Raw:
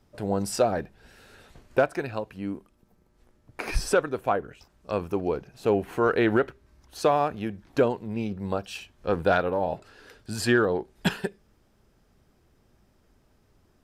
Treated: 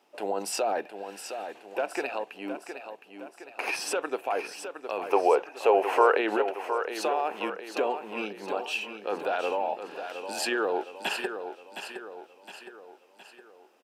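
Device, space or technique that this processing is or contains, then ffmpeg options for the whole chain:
laptop speaker: -filter_complex "[0:a]highpass=f=310:w=0.5412,highpass=f=310:w=1.3066,equalizer=f=820:t=o:w=0.58:g=8,equalizer=f=2700:t=o:w=0.4:g=11,alimiter=limit=0.112:level=0:latency=1:release=53,asettb=1/sr,asplit=3[s0][s1][s2];[s0]atrim=end=5.084[s3];[s1]atrim=start=5.08:end=6.17,asetpts=PTS-STARTPTS,afade=t=in:d=0.004:c=qsin,afade=t=out:st=1.086:d=0.004:c=qsin,equalizer=f=250:t=o:w=1:g=-8,equalizer=f=500:t=o:w=1:g=10,equalizer=f=1000:t=o:w=1:g=8,equalizer=f=2000:t=o:w=1:g=6,equalizer=f=8000:t=o:w=1:g=3[s4];[s2]atrim=start=6.166[s5];[s3][s4]acrossfade=d=0.004:c1=hsin:c2=qsin[s6];[s6][s5]acrossfade=d=0.004:c1=qsin:c2=hsin,aecho=1:1:714|1428|2142|2856|3570|4284:0.355|0.174|0.0852|0.0417|0.0205|0.01"

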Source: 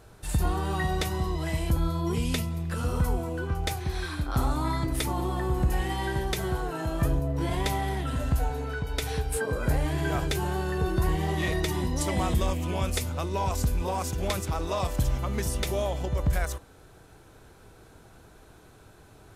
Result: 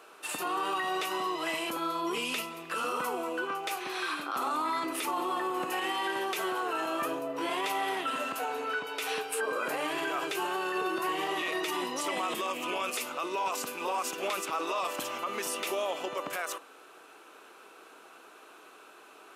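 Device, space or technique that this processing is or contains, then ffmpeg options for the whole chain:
laptop speaker: -af "highpass=f=310:w=0.5412,highpass=f=310:w=1.3066,equalizer=f=1200:t=o:w=0.49:g=10,equalizer=f=2700:t=o:w=0.45:g=11,alimiter=limit=0.0708:level=0:latency=1:release=37"

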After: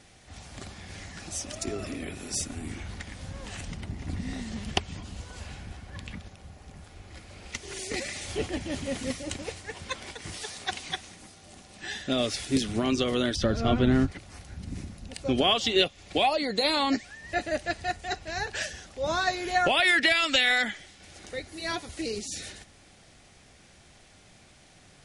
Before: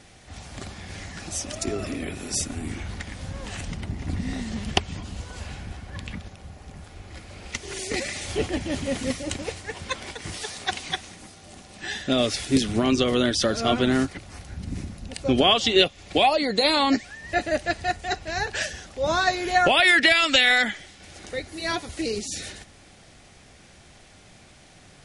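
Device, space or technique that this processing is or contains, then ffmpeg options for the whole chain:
exciter from parts: -filter_complex "[0:a]asplit=2[s0][s1];[s1]highpass=f=3100:p=1,asoftclip=type=tanh:threshold=0.0355,volume=0.224[s2];[s0][s2]amix=inputs=2:normalize=0,asettb=1/sr,asplit=3[s3][s4][s5];[s3]atrim=end=13.364[s6];[s4]atrim=start=13.36:end=14.12,asetpts=PTS-STARTPTS,afade=t=in:d=0.004:c=qsin,afade=t=out:st=0.756:d=0.004:c=qsin,aemphasis=mode=reproduction:type=bsi[s7];[s5]atrim=start=14.116[s8];[s6][s7]acrossfade=d=0.004:c1=hsin:c2=qsin[s9];[s9][s8]acrossfade=d=0.004:c1=qsin:c2=hsin,volume=0.562"

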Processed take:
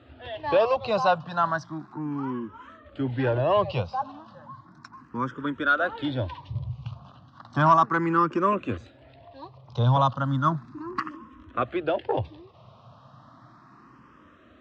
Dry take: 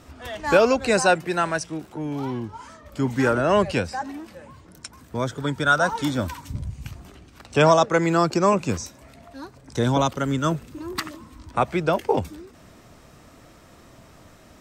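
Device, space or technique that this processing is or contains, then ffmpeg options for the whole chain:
barber-pole phaser into a guitar amplifier: -filter_complex "[0:a]asplit=2[s0][s1];[s1]afreqshift=0.34[s2];[s0][s2]amix=inputs=2:normalize=1,asoftclip=type=tanh:threshold=0.251,highpass=99,equalizer=f=120:t=q:w=4:g=8,equalizer=f=180:t=q:w=4:g=-4,equalizer=f=430:t=q:w=4:g=-6,equalizer=f=1100:t=q:w=4:g=8,equalizer=f=2200:t=q:w=4:g=-9,lowpass=f=3800:w=0.5412,lowpass=f=3800:w=1.3066"

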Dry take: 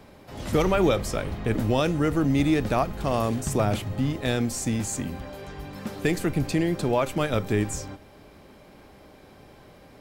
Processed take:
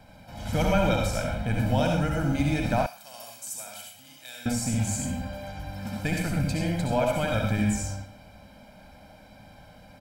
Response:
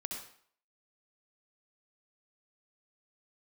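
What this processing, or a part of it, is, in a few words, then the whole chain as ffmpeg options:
microphone above a desk: -filter_complex "[0:a]aecho=1:1:1.3:0.89[s0];[1:a]atrim=start_sample=2205[s1];[s0][s1]afir=irnorm=-1:irlink=0,asettb=1/sr,asplit=3[s2][s3][s4];[s2]atrim=end=2.864[s5];[s3]atrim=start=2.86:end=4.46,asetpts=PTS-STARTPTS,afade=t=in:d=0.004:c=qsin,afade=t=out:st=1.596:d=0.004:c=qsin,aderivative[s6];[s4]atrim=start=4.456[s7];[s5][s6]acrossfade=d=0.004:c1=hsin:c2=qsin[s8];[s8][s7]acrossfade=d=0.004:c1=qsin:c2=hsin,volume=0.75"

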